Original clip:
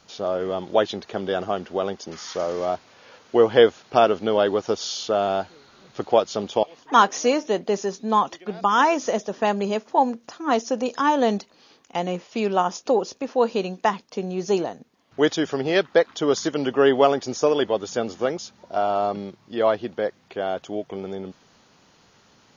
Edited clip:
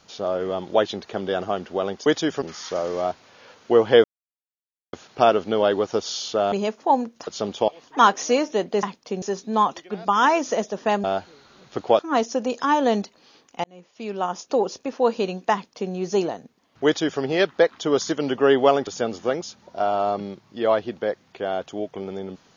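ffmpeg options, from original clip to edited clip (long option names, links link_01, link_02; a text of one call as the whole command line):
ffmpeg -i in.wav -filter_complex "[0:a]asplit=12[link_01][link_02][link_03][link_04][link_05][link_06][link_07][link_08][link_09][link_10][link_11][link_12];[link_01]atrim=end=2.062[link_13];[link_02]atrim=start=15.208:end=15.572[link_14];[link_03]atrim=start=2.058:end=3.68,asetpts=PTS-STARTPTS,afade=type=out:start_time=1.618:duration=0.004:curve=hsin,apad=pad_dur=0.89[link_15];[link_04]atrim=start=3.68:end=5.272,asetpts=PTS-STARTPTS,afade=type=in:duration=0.004:curve=hsin[link_16];[link_05]atrim=start=9.598:end=10.352[link_17];[link_06]atrim=start=6.218:end=7.782[link_18];[link_07]atrim=start=13.888:end=14.282[link_19];[link_08]atrim=start=7.778:end=9.602[link_20];[link_09]atrim=start=5.268:end=6.222[link_21];[link_10]atrim=start=10.348:end=12,asetpts=PTS-STARTPTS,afade=type=out:start_time=1.648:duration=0.004:curve=hsin[link_22];[link_11]atrim=start=12:end=17.232,asetpts=PTS-STARTPTS,afade=type=in:duration=1.04[link_23];[link_12]atrim=start=17.828[link_24];[link_13][link_14]acrossfade=duration=0.004:curve1=hsin:curve2=hsin[link_25];[link_15][link_16]concat=n=2:v=0:a=1[link_26];[link_25][link_26]acrossfade=duration=0.004:curve1=hsin:curve2=hsin[link_27];[link_27][link_17]acrossfade=duration=0.004:curve1=hsin:curve2=hsin[link_28];[link_28][link_18]acrossfade=duration=0.004:curve1=hsin:curve2=hsin[link_29];[link_29][link_19]acrossfade=duration=0.004:curve1=hsin:curve2=hsin[link_30];[link_30][link_20]acrossfade=duration=0.004:curve1=hsin:curve2=hsin[link_31];[link_31][link_21]acrossfade=duration=0.004:curve1=hsin:curve2=hsin[link_32];[link_22][link_23]concat=n=2:v=0:a=1[link_33];[link_32][link_33]acrossfade=duration=0.004:curve1=hsin:curve2=hsin[link_34];[link_34][link_24]acrossfade=duration=0.004:curve1=hsin:curve2=hsin" out.wav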